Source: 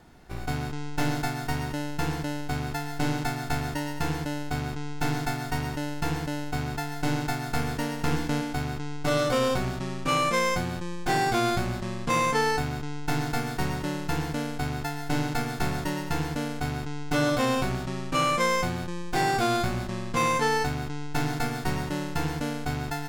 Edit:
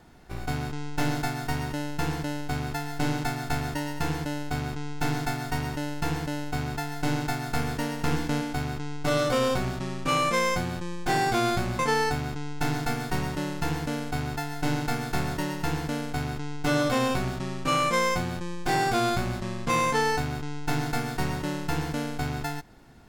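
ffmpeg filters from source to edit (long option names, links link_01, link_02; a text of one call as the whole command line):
ffmpeg -i in.wav -filter_complex "[0:a]asplit=2[link_01][link_02];[link_01]atrim=end=11.792[link_03];[link_02]atrim=start=12.258[link_04];[link_03][link_04]acrossfade=duration=0.004:curve1=hsin:curve2=hsin" out.wav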